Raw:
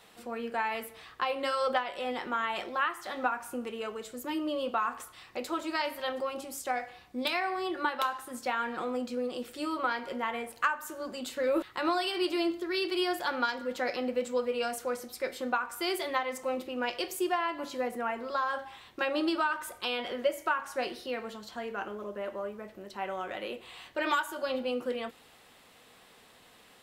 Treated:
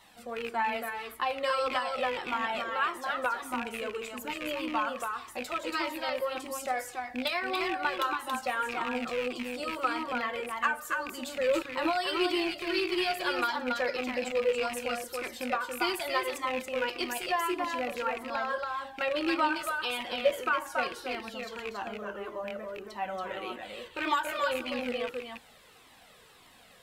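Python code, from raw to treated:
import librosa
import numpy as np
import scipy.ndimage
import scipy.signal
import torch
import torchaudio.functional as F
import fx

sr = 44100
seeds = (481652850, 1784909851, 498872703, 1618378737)

y = fx.rattle_buzz(x, sr, strikes_db=-44.0, level_db=-24.0)
y = y + 10.0 ** (-4.0 / 20.0) * np.pad(y, (int(280 * sr / 1000.0), 0))[:len(y)]
y = fx.comb_cascade(y, sr, direction='falling', hz=1.7)
y = F.gain(torch.from_numpy(y), 4.0).numpy()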